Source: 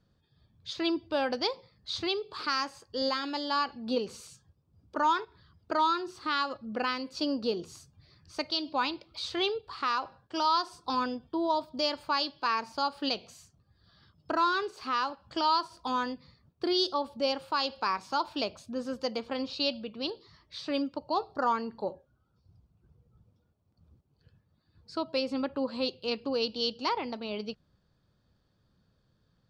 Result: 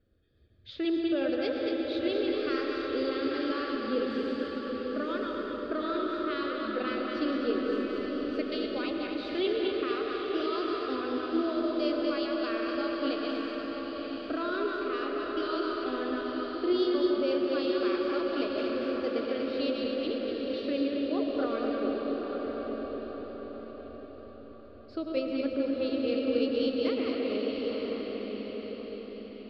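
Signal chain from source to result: regenerating reverse delay 0.121 s, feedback 68%, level -4 dB; in parallel at -3 dB: compressor, threshold -38 dBFS, peak gain reduction 16.5 dB; on the sum: air absorption 400 m; fixed phaser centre 380 Hz, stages 4; diffused feedback echo 0.924 s, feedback 42%, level -5 dB; on a send at -3 dB: reverb RT60 4.1 s, pre-delay 70 ms

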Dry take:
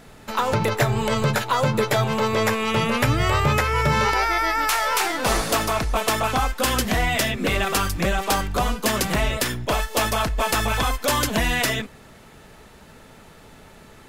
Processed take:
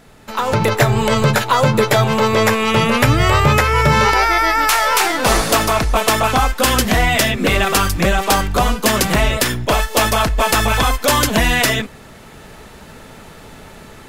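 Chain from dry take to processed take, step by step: AGC gain up to 8.5 dB

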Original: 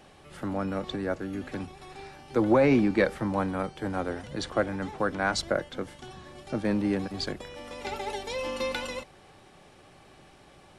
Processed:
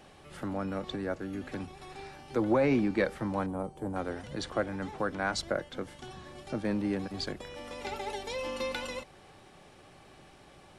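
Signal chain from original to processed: 3.46–3.96 band shelf 2800 Hz -14 dB 2.4 oct; in parallel at -3 dB: compressor, threshold -37 dBFS, peak gain reduction 18.5 dB; on the sum: gain -5.5 dB

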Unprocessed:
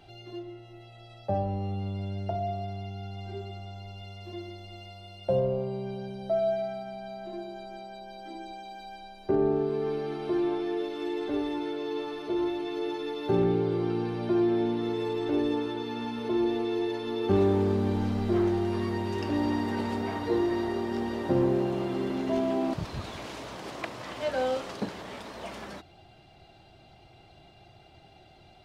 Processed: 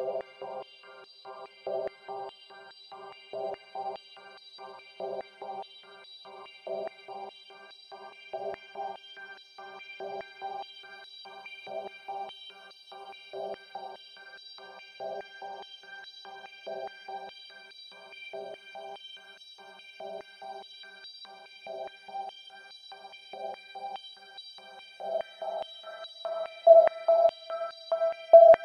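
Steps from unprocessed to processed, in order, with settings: Paulstretch 40×, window 0.10 s, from 5.64; stepped high-pass 4.8 Hz 640–4100 Hz

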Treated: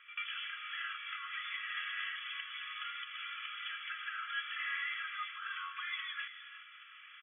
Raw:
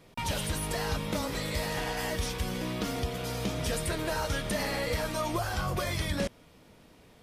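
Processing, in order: reverse; upward compressor, threshold -45 dBFS; reverse; comb 3 ms, depth 64%; pre-echo 92 ms -19 dB; compressor 2.5:1, threshold -40 dBFS, peak gain reduction 11 dB; brick-wall FIR band-pass 1100–3500 Hz; non-linear reverb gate 0.39 s rising, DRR 9.5 dB; gain +5.5 dB

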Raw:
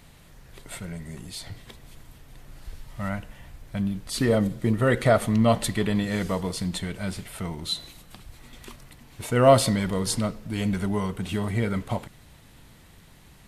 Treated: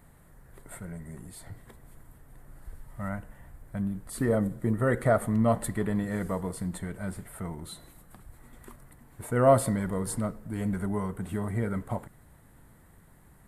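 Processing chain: band shelf 3900 Hz -14 dB; gain -4 dB

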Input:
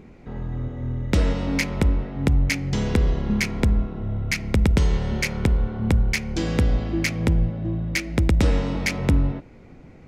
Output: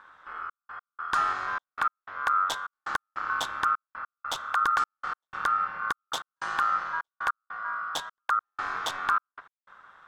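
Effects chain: step gate "xxxxx..x..x" 152 bpm -60 dB; ring modulator 1300 Hz; gain -4.5 dB

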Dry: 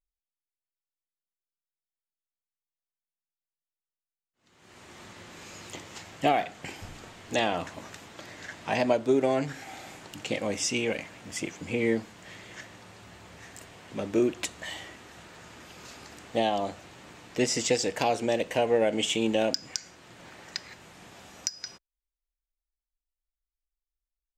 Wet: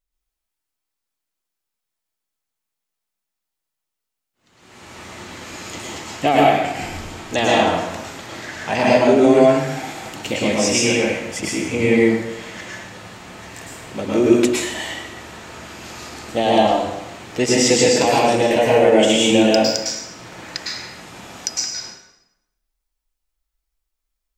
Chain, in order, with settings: plate-style reverb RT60 0.89 s, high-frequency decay 0.85×, pre-delay 95 ms, DRR -5 dB; gain +6 dB

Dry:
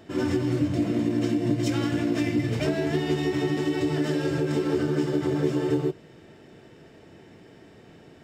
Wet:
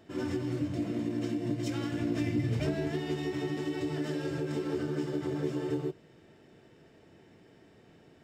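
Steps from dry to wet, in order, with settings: 2–2.88 low shelf 140 Hz +10.5 dB; gain -8 dB

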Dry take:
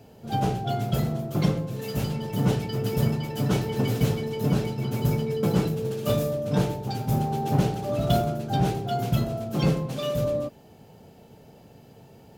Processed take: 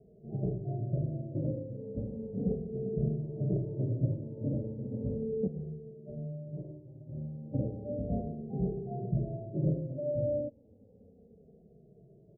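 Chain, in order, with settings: Chebyshev low-pass 610 Hz, order 5; 5.47–7.54 resonator 76 Hz, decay 0.6 s, harmonics all, mix 90%; endless flanger 2.4 ms -0.34 Hz; gain -4 dB

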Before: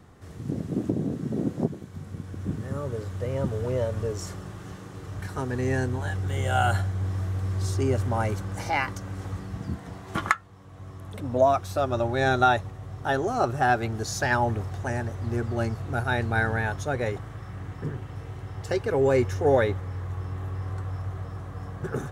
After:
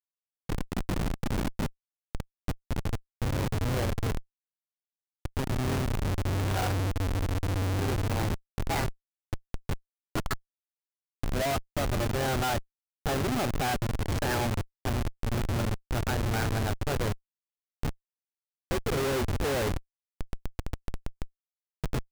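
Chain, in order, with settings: rattling part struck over -25 dBFS, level -22 dBFS; Schmitt trigger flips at -25 dBFS

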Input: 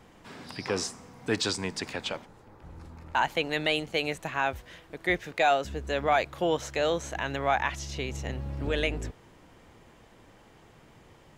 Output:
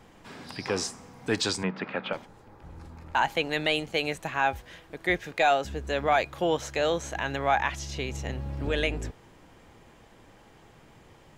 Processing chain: 1.63–2.13 speaker cabinet 160–2900 Hz, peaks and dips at 190 Hz +9 dB, 560 Hz +6 dB, 1300 Hz +9 dB; resonator 820 Hz, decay 0.16 s, harmonics all, mix 50%; gain +6.5 dB

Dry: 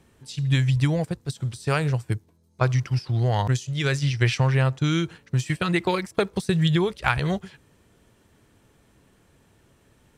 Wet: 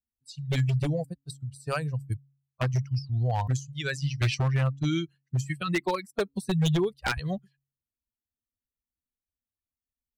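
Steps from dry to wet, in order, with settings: per-bin expansion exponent 2; wavefolder -19 dBFS; de-hum 137.8 Hz, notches 2

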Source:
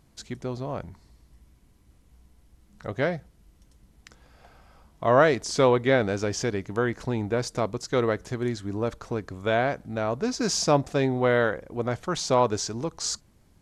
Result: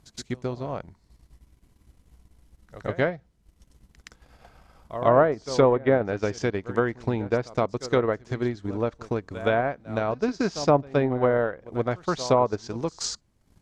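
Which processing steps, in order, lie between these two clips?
treble ducked by the level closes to 1200 Hz, closed at -17.5 dBFS; pre-echo 0.12 s -13 dB; transient shaper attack +4 dB, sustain -9 dB

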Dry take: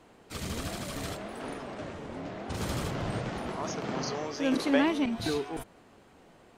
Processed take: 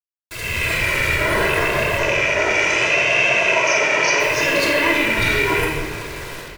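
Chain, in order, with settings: rattling part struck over -41 dBFS, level -19 dBFS; bell 1900 Hz +9.5 dB 0.71 oct; notches 50/100/150/200/250/300/350/400/450 Hz; comb 2 ms, depth 84%; limiter -28.5 dBFS, peak gain reduction 21 dB; AGC gain up to 15 dB; bit-crush 6-bit; vibrato 0.71 Hz 93 cents; 1.98–4.2 speaker cabinet 280–7100 Hz, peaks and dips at 670 Hz +8 dB, 2700 Hz +4 dB, 4100 Hz -4 dB, 6000 Hz +10 dB; feedback echo 0.751 s, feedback 39%, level -21 dB; shoebox room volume 1500 m³, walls mixed, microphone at 3 m

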